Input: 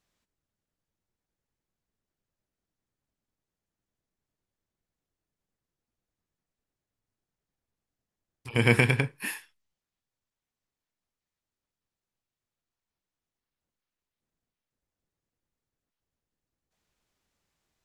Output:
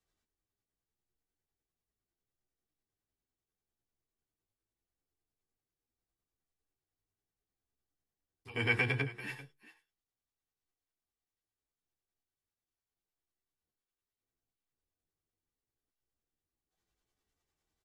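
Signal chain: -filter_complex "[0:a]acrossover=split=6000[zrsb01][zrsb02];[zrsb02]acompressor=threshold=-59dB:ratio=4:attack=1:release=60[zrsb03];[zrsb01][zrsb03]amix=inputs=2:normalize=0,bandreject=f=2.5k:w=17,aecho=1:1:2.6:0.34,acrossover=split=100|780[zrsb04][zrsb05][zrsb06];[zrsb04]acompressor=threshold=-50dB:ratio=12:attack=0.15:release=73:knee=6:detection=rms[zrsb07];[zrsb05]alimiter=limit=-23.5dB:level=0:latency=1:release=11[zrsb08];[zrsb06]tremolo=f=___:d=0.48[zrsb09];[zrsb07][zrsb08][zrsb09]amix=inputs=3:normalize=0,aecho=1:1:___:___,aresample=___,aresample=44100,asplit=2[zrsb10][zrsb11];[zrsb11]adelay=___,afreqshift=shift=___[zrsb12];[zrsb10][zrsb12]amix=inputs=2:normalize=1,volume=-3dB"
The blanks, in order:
10, 392, 0.15, 32000, 10.8, 0.74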